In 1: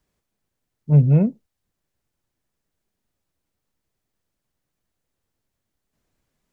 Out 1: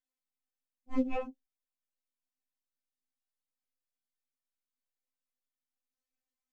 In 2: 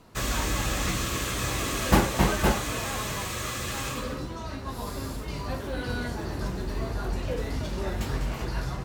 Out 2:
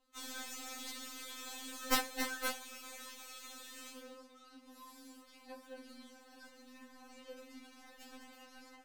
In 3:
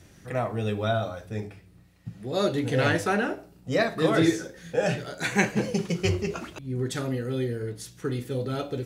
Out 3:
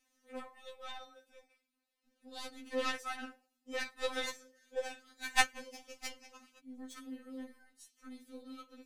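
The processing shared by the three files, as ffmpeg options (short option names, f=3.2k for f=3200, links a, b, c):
-af "tiltshelf=f=1.3k:g=-3.5,aeval=exprs='0.562*(cos(1*acos(clip(val(0)/0.562,-1,1)))-cos(1*PI/2))+0.141*(cos(3*acos(clip(val(0)/0.562,-1,1)))-cos(3*PI/2))+0.00355*(cos(6*acos(clip(val(0)/0.562,-1,1)))-cos(6*PI/2))+0.0141*(cos(7*acos(clip(val(0)/0.562,-1,1)))-cos(7*PI/2))':c=same,afftfilt=real='re*3.46*eq(mod(b,12),0)':imag='im*3.46*eq(mod(b,12),0)':win_size=2048:overlap=0.75,volume=4.5dB"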